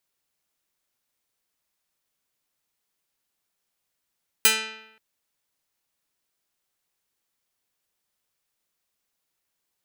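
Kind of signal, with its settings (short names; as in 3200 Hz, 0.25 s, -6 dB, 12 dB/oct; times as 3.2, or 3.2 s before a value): plucked string A3, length 0.53 s, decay 0.88 s, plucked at 0.4, medium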